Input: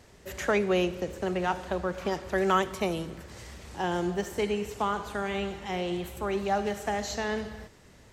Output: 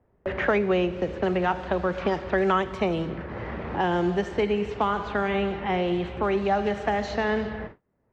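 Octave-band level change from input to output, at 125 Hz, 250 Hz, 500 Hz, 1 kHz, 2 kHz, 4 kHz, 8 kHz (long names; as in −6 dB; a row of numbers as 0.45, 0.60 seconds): +5.0 dB, +5.0 dB, +4.5 dB, +4.0 dB, +4.5 dB, +0.5 dB, below −10 dB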